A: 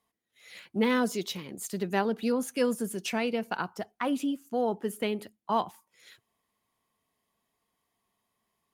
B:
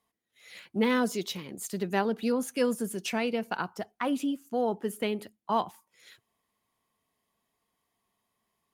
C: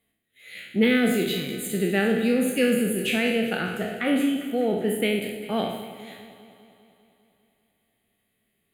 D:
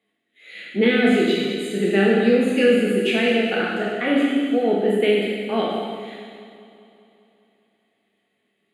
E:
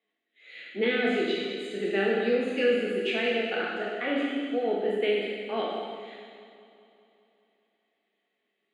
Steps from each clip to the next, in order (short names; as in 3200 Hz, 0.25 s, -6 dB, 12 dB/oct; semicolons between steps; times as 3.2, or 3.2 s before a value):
nothing audible
spectral trails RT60 0.79 s; fixed phaser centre 2400 Hz, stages 4; echo with dull and thin repeats by turns 0.1 s, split 810 Hz, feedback 80%, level -11.5 dB; gain +6.5 dB
Chebyshev high-pass 270 Hz, order 2; air absorption 90 m; non-linear reverb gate 0.45 s falling, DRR -0.5 dB; gain +3 dB
three-band isolator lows -14 dB, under 270 Hz, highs -19 dB, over 6800 Hz; gain -6.5 dB